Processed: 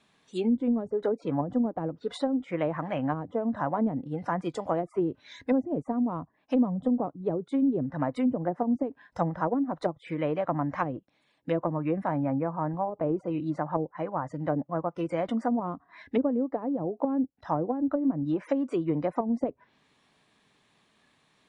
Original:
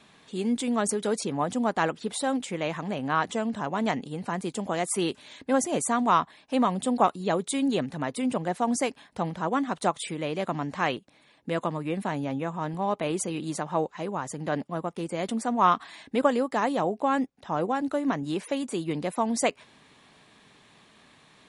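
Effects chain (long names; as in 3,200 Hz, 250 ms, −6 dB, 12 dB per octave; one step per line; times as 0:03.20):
noise reduction from a noise print of the clip's start 13 dB
treble cut that deepens with the level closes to 330 Hz, closed at −23 dBFS
0:12.30–0:14.88: high-shelf EQ 2,600 Hz −11 dB
level +3 dB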